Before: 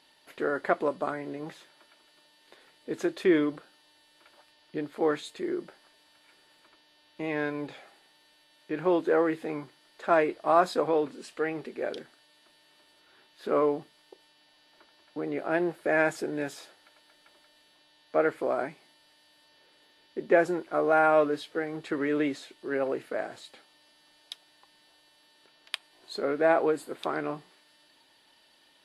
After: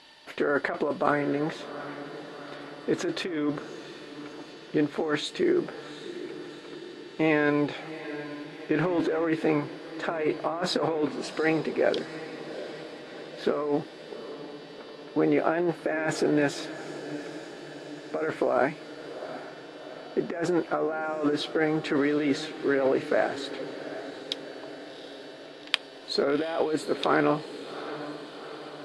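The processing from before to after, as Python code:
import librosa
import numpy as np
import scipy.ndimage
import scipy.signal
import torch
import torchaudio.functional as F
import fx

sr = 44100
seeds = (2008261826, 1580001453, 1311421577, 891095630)

p1 = fx.over_compress(x, sr, threshold_db=-31.0, ratio=-1.0)
p2 = p1 + fx.echo_diffused(p1, sr, ms=756, feedback_pct=65, wet_db=-13, dry=0)
p3 = fx.leveller(p2, sr, passes=1, at=(8.79, 9.25))
p4 = scipy.signal.sosfilt(scipy.signal.butter(2, 6800.0, 'lowpass', fs=sr, output='sos'), p3)
y = p4 * librosa.db_to_amplitude(5.5)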